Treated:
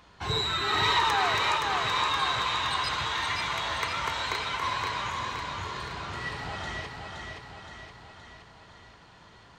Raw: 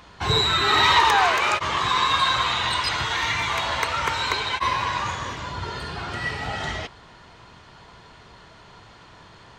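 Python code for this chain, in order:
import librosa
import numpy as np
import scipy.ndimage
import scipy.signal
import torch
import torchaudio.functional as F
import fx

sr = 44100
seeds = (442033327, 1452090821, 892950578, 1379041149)

y = fx.echo_feedback(x, sr, ms=520, feedback_pct=56, wet_db=-4.5)
y = F.gain(torch.from_numpy(y), -8.0).numpy()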